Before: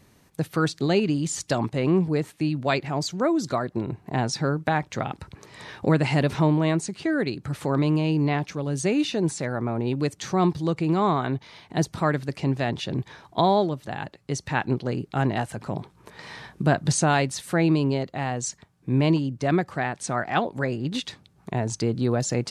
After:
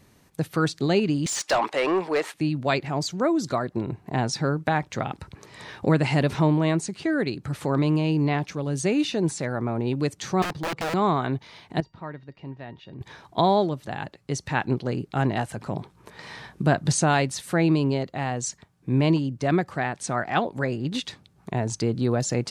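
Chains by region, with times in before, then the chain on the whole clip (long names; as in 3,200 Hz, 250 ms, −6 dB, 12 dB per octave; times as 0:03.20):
0:01.26–0:02.34: high-pass filter 530 Hz + mid-hump overdrive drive 21 dB, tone 2,600 Hz, clips at −12 dBFS
0:10.42–0:10.94: wrap-around overflow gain 21 dB + low-pass filter 2,900 Hz 6 dB per octave + low-shelf EQ 180 Hz −5.5 dB
0:11.80–0:13.01: high-frequency loss of the air 240 metres + tuned comb filter 930 Hz, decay 0.2 s, mix 80%
whole clip: no processing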